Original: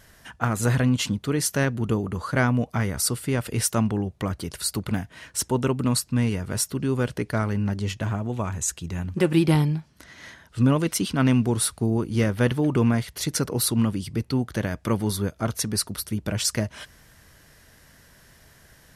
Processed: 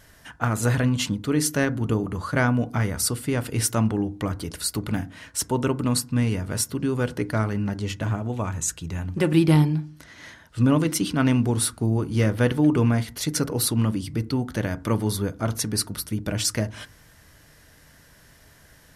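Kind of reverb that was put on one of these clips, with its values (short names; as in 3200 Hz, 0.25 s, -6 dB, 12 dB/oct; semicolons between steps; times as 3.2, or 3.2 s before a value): FDN reverb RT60 0.38 s, low-frequency decay 1.45×, high-frequency decay 0.3×, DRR 12.5 dB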